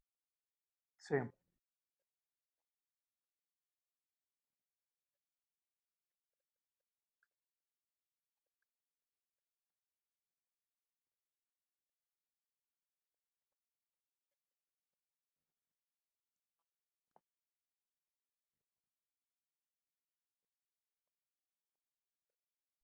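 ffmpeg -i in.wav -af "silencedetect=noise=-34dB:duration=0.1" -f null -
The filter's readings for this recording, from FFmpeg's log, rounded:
silence_start: 0.00
silence_end: 1.12 | silence_duration: 1.12
silence_start: 1.23
silence_end: 22.84 | silence_duration: 21.61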